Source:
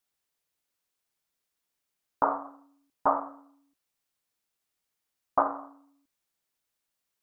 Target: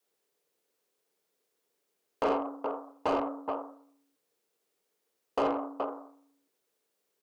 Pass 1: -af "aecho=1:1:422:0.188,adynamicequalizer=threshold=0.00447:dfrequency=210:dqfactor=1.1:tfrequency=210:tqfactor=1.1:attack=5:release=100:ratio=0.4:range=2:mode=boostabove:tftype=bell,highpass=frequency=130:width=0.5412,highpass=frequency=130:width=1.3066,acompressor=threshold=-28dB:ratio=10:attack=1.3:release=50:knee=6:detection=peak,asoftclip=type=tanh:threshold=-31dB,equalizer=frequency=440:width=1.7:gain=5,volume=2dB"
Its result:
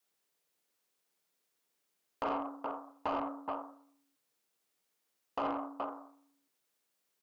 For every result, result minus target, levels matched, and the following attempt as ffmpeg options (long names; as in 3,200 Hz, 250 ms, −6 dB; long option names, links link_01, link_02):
downward compressor: peak gain reduction +6.5 dB; 500 Hz band −3.0 dB
-af "aecho=1:1:422:0.188,adynamicequalizer=threshold=0.00447:dfrequency=210:dqfactor=1.1:tfrequency=210:tqfactor=1.1:attack=5:release=100:ratio=0.4:range=2:mode=boostabove:tftype=bell,highpass=frequency=130:width=0.5412,highpass=frequency=130:width=1.3066,acompressor=threshold=-21dB:ratio=10:attack=1.3:release=50:knee=6:detection=peak,asoftclip=type=tanh:threshold=-31dB,equalizer=frequency=440:width=1.7:gain=5,volume=2dB"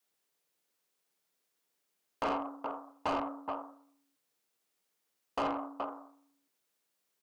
500 Hz band −3.0 dB
-af "aecho=1:1:422:0.188,adynamicequalizer=threshold=0.00447:dfrequency=210:dqfactor=1.1:tfrequency=210:tqfactor=1.1:attack=5:release=100:ratio=0.4:range=2:mode=boostabove:tftype=bell,highpass=frequency=130:width=0.5412,highpass=frequency=130:width=1.3066,acompressor=threshold=-21dB:ratio=10:attack=1.3:release=50:knee=6:detection=peak,asoftclip=type=tanh:threshold=-31dB,equalizer=frequency=440:width=1.7:gain=17,volume=2dB"